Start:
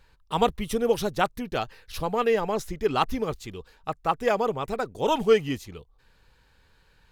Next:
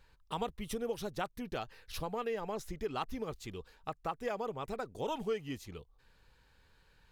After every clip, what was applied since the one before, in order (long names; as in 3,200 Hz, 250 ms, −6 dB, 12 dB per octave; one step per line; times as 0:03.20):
downward compressor 2.5 to 1, threshold −32 dBFS, peak gain reduction 12 dB
level −5 dB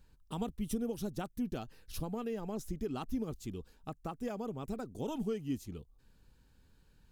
octave-band graphic EQ 250/500/1,000/2,000/4,000 Hz +6/−6/−7/−10/−6 dB
level +2.5 dB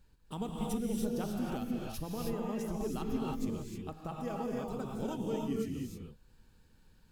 reverb whose tail is shaped and stops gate 340 ms rising, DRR −2 dB
level −1.5 dB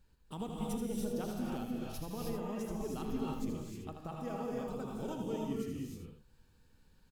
single-tap delay 79 ms −6.5 dB
level −3 dB